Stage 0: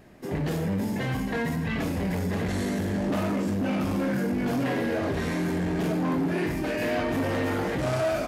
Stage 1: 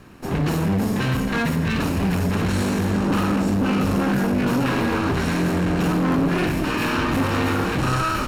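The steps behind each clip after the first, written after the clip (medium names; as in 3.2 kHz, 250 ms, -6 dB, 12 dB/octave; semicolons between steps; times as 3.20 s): comb filter that takes the minimum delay 0.73 ms; trim +7.5 dB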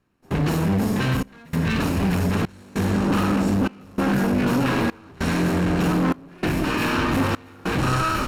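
trance gate "..xxxxxx" 98 bpm -24 dB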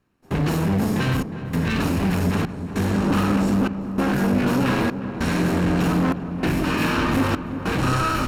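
filtered feedback delay 359 ms, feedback 73%, low-pass 1.3 kHz, level -11 dB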